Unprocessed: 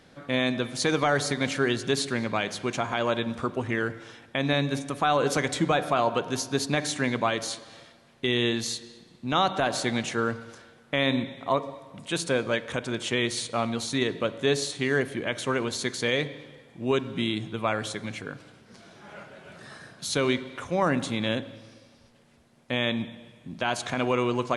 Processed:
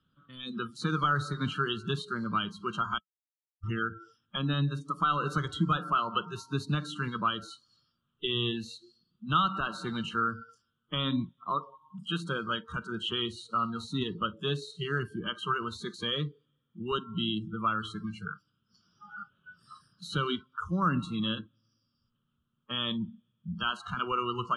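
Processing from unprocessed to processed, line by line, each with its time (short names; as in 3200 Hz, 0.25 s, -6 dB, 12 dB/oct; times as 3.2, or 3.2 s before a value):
2.98–3.63 mute
whole clip: spectral noise reduction 30 dB; EQ curve 180 Hz 0 dB, 750 Hz -23 dB, 1300 Hz +4 dB, 2100 Hz -26 dB, 3100 Hz +2 dB, 4800 Hz -23 dB; three-band squash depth 40%; gain +3.5 dB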